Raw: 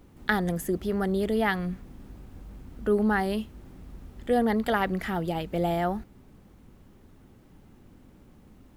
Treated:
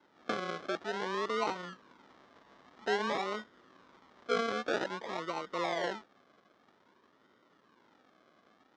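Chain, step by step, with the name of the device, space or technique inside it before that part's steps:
circuit-bent sampling toy (sample-and-hold swept by an LFO 37×, swing 60% 0.51 Hz; loudspeaker in its box 480–4,900 Hz, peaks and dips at 750 Hz −5 dB, 1,100 Hz +3 dB, 2,600 Hz −8 dB, 4,500 Hz −5 dB)
level −2.5 dB

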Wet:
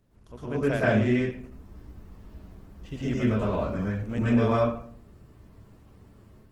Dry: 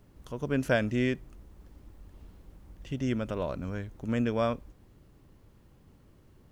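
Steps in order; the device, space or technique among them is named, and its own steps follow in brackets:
speakerphone in a meeting room (convolution reverb RT60 0.55 s, pre-delay 107 ms, DRR −8.5 dB; automatic gain control gain up to 5 dB; level −8 dB; Opus 16 kbit/s 48,000 Hz)

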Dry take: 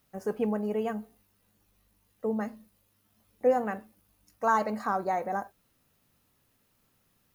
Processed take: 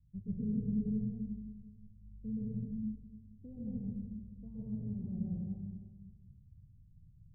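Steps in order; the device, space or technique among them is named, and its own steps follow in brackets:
club heard from the street (brickwall limiter −21 dBFS, peak gain reduction 8.5 dB; low-pass filter 130 Hz 24 dB per octave; convolution reverb RT60 1.3 s, pre-delay 116 ms, DRR −5 dB)
level +12.5 dB

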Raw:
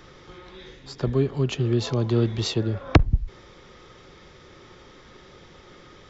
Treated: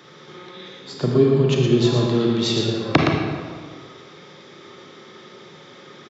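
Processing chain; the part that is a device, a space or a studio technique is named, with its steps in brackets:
PA in a hall (high-pass filter 140 Hz 24 dB per octave; parametric band 3,600 Hz +5 dB 0.27 octaves; single-tap delay 117 ms −6 dB; convolution reverb RT60 1.7 s, pre-delay 30 ms, DRR 0.5 dB)
0:00.92–0:02.07: low-shelf EQ 260 Hz +6.5 dB
level +1.5 dB

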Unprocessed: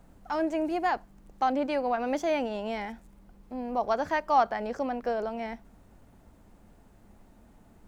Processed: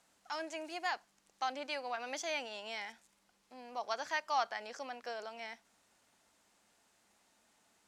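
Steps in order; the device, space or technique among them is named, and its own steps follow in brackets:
piezo pickup straight into a mixer (low-pass filter 6,200 Hz 12 dB per octave; first difference)
level +8 dB

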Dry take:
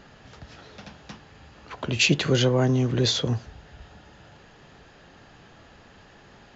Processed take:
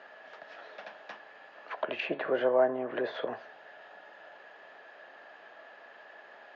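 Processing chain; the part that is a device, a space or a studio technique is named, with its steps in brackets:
tin-can telephone (band-pass filter 540–2,600 Hz; hollow resonant body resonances 630/1,700 Hz, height 9 dB, ringing for 25 ms)
0:01.95–0:03.26: hum removal 137 Hz, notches 34
Bessel high-pass filter 220 Hz, order 2
treble cut that deepens with the level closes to 1,300 Hz, closed at −27 dBFS

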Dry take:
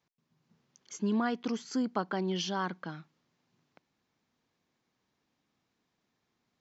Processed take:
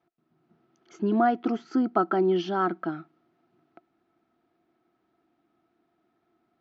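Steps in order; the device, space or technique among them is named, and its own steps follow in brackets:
inside a cardboard box (low-pass filter 3,100 Hz 12 dB per octave; hollow resonant body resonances 340/690/1,300 Hz, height 18 dB, ringing for 50 ms)

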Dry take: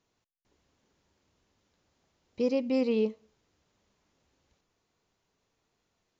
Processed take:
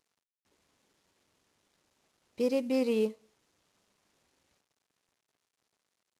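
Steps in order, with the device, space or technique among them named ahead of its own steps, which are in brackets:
early wireless headset (high-pass filter 180 Hz 6 dB per octave; variable-slope delta modulation 64 kbit/s)

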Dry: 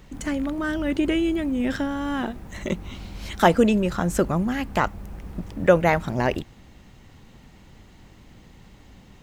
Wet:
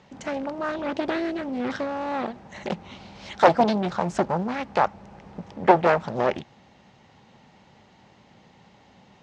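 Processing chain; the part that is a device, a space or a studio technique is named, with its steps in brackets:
full-range speaker at full volume (highs frequency-modulated by the lows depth 0.87 ms; loudspeaker in its box 150–6,300 Hz, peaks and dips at 300 Hz −6 dB, 590 Hz +4 dB, 840 Hz +7 dB)
level −2 dB

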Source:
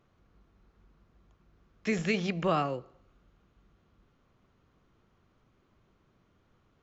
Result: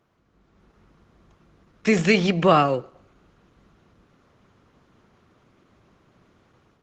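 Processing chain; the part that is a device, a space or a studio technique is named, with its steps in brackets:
video call (high-pass filter 120 Hz 6 dB per octave; automatic gain control gain up to 9 dB; level +3 dB; Opus 16 kbit/s 48,000 Hz)

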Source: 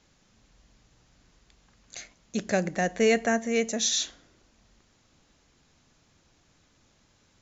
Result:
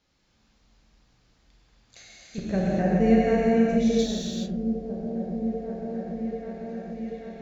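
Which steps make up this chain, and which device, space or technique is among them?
exciter from parts (in parallel at −7 dB: high-pass filter 3,400 Hz 24 dB per octave + soft clipping −29.5 dBFS, distortion −8 dB + high-pass filter 4,800 Hz 24 dB per octave)
0:02.38–0:03.99: on the sum: spectral tilt −4.5 dB per octave
echo whose low-pass opens from repeat to repeat 788 ms, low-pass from 200 Hz, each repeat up 1 octave, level −6 dB
reverb whose tail is shaped and stops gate 450 ms flat, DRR −6.5 dB
level −9 dB

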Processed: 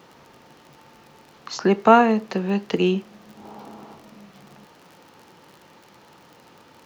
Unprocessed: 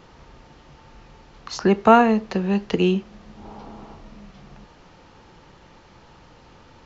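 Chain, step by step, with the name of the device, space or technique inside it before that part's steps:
vinyl LP (surface crackle 41 per second −37 dBFS; pink noise bed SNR 40 dB)
high-pass filter 170 Hz 12 dB per octave

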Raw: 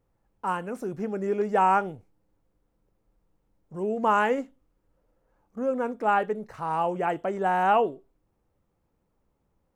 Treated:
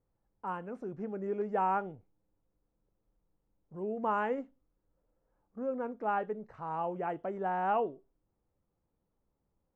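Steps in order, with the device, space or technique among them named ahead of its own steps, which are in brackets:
through cloth (low-pass filter 7,800 Hz 12 dB per octave; high-shelf EQ 3,300 Hz −17 dB)
level −7.5 dB

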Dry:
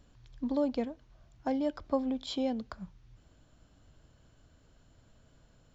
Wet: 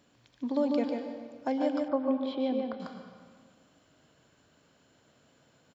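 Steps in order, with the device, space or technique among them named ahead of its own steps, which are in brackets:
PA in a hall (high-pass filter 200 Hz 12 dB per octave; parametric band 2,300 Hz +3 dB 0.65 octaves; single-tap delay 146 ms −5 dB; convolution reverb RT60 1.7 s, pre-delay 103 ms, DRR 6.5 dB)
0:01.88–0:02.80: high-frequency loss of the air 380 metres
level +1.5 dB

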